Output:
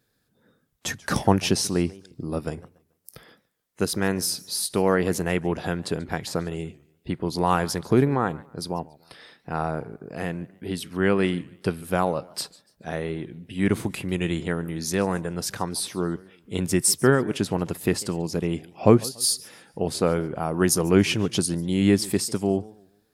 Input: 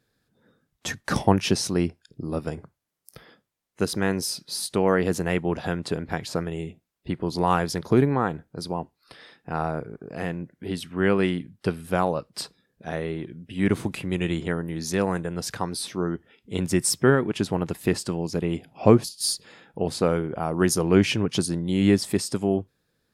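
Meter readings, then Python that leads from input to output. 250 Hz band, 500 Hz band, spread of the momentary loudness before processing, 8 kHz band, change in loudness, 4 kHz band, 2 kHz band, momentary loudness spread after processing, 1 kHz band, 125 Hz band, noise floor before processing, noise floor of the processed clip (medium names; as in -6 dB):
0.0 dB, 0.0 dB, 14 LU, +3.5 dB, +0.5 dB, +1.5 dB, +0.5 dB, 14 LU, 0.0 dB, 0.0 dB, -76 dBFS, -70 dBFS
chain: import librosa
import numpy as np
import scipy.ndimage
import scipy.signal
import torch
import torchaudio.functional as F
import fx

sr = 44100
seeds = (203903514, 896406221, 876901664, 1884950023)

y = fx.high_shelf(x, sr, hz=9500.0, db=8.5)
y = fx.echo_warbled(y, sr, ms=143, feedback_pct=32, rate_hz=2.8, cents=203, wet_db=-22.0)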